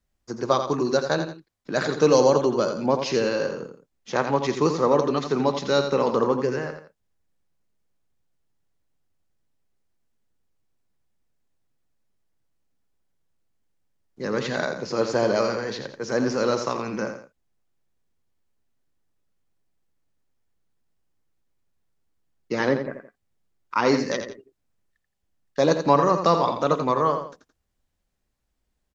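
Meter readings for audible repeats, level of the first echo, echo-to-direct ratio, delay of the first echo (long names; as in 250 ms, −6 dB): 2, −8.0 dB, −7.5 dB, 85 ms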